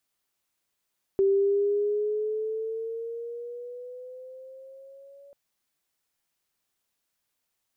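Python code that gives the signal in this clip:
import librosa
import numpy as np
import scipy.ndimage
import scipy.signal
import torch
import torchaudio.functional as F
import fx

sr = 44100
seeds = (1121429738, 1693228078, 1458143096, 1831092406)

y = fx.riser_tone(sr, length_s=4.14, level_db=-18, wave='sine', hz=389.0, rise_st=6.5, swell_db=-30.0)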